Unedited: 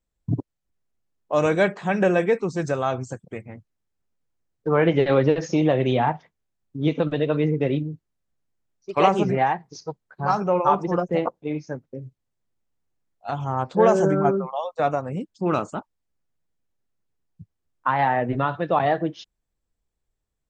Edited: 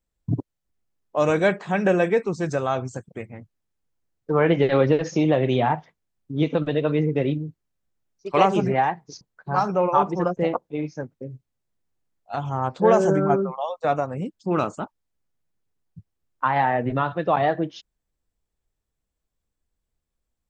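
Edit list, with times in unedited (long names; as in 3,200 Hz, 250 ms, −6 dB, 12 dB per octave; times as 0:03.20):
compress silence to 75%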